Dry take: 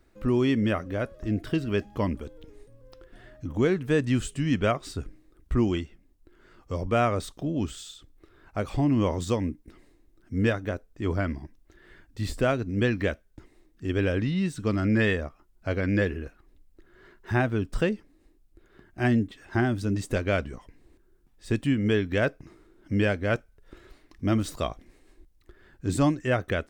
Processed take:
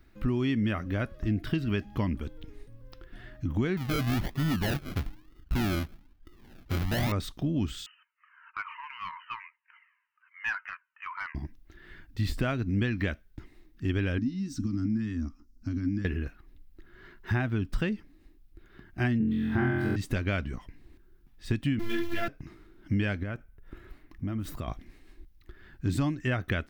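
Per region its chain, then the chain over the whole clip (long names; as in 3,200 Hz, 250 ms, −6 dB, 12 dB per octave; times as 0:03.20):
0:03.77–0:07.12: sample-and-hold swept by an LFO 38×, swing 60% 1.1 Hz + gain into a clipping stage and back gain 25.5 dB
0:07.86–0:11.35: linear-phase brick-wall band-pass 890–3,100 Hz + mid-hump overdrive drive 15 dB, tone 1,700 Hz, clips at −18 dBFS + flanger whose copies keep moving one way falling 1.2 Hz
0:14.18–0:16.05: downward compressor 10 to 1, threshold −30 dBFS + drawn EQ curve 110 Hz 0 dB, 160 Hz −13 dB, 250 Hz +14 dB, 490 Hz −20 dB, 1,200 Hz −9 dB, 2,000 Hz −13 dB, 3,500 Hz −12 dB, 5,600 Hz +7 dB, 10,000 Hz −6 dB
0:19.18–0:19.96: parametric band 5,700 Hz −13.5 dB 1.3 octaves + flutter between parallel walls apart 3.9 metres, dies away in 1.3 s
0:21.79–0:22.28: converter with a step at zero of −27 dBFS + phases set to zero 343 Hz + string-ensemble chorus
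0:23.23–0:24.68: parametric band 4,500 Hz −10 dB 1.6 octaves + downward compressor 5 to 1, threshold −33 dBFS
whole clip: octave-band graphic EQ 500/1,000/8,000 Hz −10/−3/−10 dB; downward compressor, threshold −29 dBFS; level +5 dB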